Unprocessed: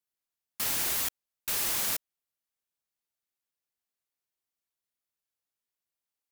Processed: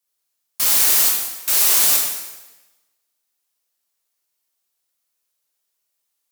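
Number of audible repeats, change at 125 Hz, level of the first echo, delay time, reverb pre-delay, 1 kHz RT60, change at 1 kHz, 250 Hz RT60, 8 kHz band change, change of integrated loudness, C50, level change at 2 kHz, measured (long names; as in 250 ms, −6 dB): no echo audible, can't be measured, no echo audible, no echo audible, 6 ms, 1.1 s, +10.0 dB, 1.1 s, +15.0 dB, +15.0 dB, 2.0 dB, +10.0 dB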